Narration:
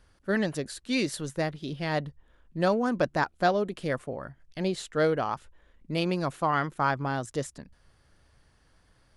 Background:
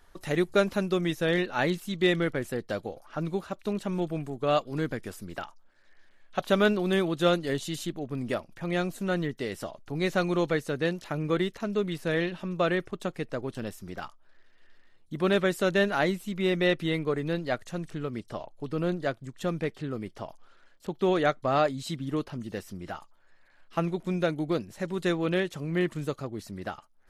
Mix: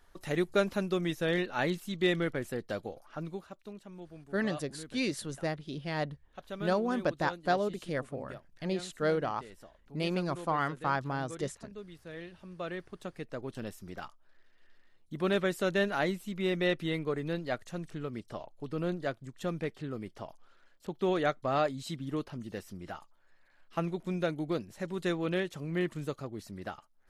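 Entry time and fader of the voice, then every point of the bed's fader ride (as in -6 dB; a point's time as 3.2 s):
4.05 s, -4.5 dB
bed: 3.01 s -4 dB
3.84 s -17.5 dB
12.1 s -17.5 dB
13.58 s -4.5 dB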